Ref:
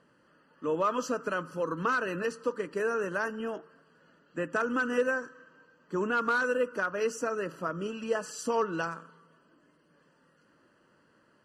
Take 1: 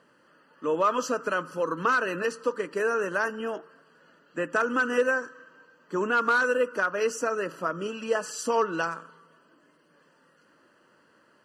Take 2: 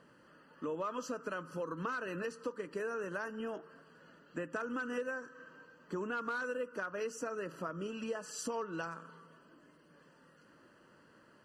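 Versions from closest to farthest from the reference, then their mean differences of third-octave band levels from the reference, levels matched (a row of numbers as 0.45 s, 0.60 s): 1, 2; 1.5 dB, 3.0 dB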